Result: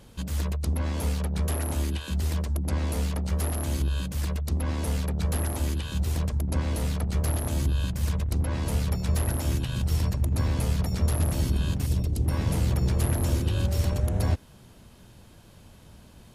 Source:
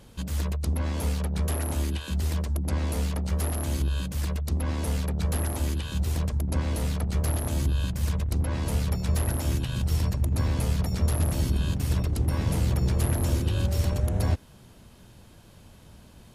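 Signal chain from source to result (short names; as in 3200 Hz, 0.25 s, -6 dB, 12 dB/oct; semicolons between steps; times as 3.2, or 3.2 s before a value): 11.86–12.26 bell 1400 Hz -11.5 dB 1.9 oct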